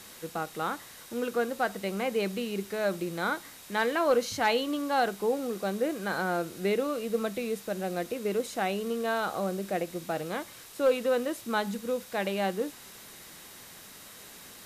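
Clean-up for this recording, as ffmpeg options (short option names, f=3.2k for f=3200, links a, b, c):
-af "bandreject=f=3.8k:w=30,afwtdn=0.004"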